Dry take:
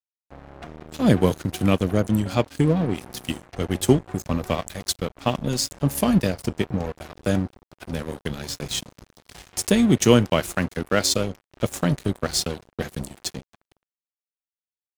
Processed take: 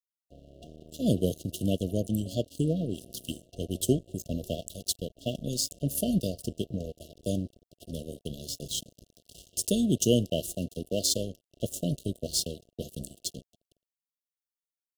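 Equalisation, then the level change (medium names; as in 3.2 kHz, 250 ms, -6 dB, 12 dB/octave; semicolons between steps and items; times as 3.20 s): brick-wall FIR band-stop 710–2700 Hz; treble shelf 6 kHz +7 dB; -8.0 dB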